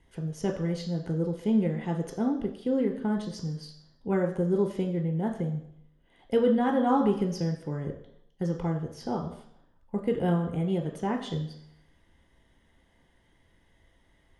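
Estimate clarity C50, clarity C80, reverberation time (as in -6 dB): 9.0 dB, 11.5 dB, 0.70 s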